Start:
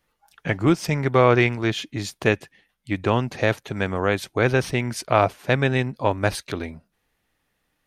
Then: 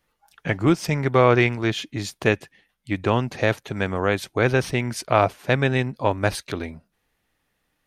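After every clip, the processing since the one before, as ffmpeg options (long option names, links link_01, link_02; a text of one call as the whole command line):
ffmpeg -i in.wav -af anull out.wav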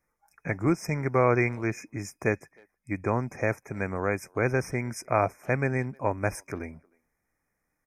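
ffmpeg -i in.wav -filter_complex "[0:a]afftfilt=real='re*(1-between(b*sr/4096,2500,5000))':imag='im*(1-between(b*sr/4096,2500,5000))':win_size=4096:overlap=0.75,asplit=2[link_01][link_02];[link_02]adelay=310,highpass=300,lowpass=3400,asoftclip=type=hard:threshold=-12dB,volume=-29dB[link_03];[link_01][link_03]amix=inputs=2:normalize=0,volume=-6dB" out.wav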